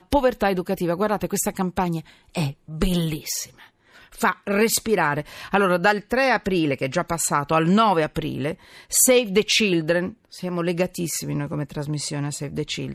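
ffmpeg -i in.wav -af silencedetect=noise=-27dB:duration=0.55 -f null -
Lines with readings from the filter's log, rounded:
silence_start: 3.44
silence_end: 4.21 | silence_duration: 0.77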